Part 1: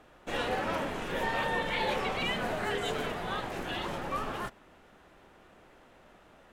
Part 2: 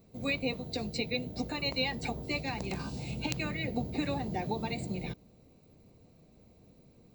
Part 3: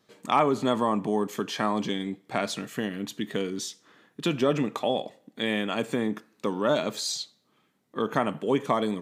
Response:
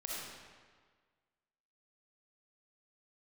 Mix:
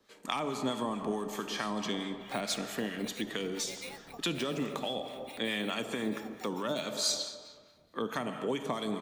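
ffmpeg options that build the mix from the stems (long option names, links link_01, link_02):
-filter_complex "[0:a]acompressor=threshold=-33dB:ratio=6,volume=-18dB[link_01];[1:a]acrossover=split=390|3000[link_02][link_03][link_04];[link_02]acompressor=threshold=-55dB:ratio=2.5[link_05];[link_05][link_03][link_04]amix=inputs=3:normalize=0,acrusher=samples=7:mix=1:aa=0.000001,adelay=2050,volume=-9.5dB,asplit=2[link_06][link_07];[link_07]volume=-21.5dB[link_08];[2:a]lowshelf=frequency=210:gain=-10.5,bandreject=frequency=50:width_type=h:width=6,bandreject=frequency=100:width_type=h:width=6,bandreject=frequency=150:width_type=h:width=6,volume=-0.5dB,asplit=2[link_09][link_10];[link_10]volume=-6.5dB[link_11];[3:a]atrim=start_sample=2205[link_12];[link_11][link_12]afir=irnorm=-1:irlink=0[link_13];[link_08]aecho=0:1:682:1[link_14];[link_01][link_06][link_09][link_13][link_14]amix=inputs=5:normalize=0,acrossover=split=250|3000[link_15][link_16][link_17];[link_16]acompressor=threshold=-31dB:ratio=6[link_18];[link_15][link_18][link_17]amix=inputs=3:normalize=0,acrossover=split=980[link_19][link_20];[link_19]aeval=exprs='val(0)*(1-0.5/2+0.5/2*cos(2*PI*4.6*n/s))':channel_layout=same[link_21];[link_20]aeval=exprs='val(0)*(1-0.5/2-0.5/2*cos(2*PI*4.6*n/s))':channel_layout=same[link_22];[link_21][link_22]amix=inputs=2:normalize=0"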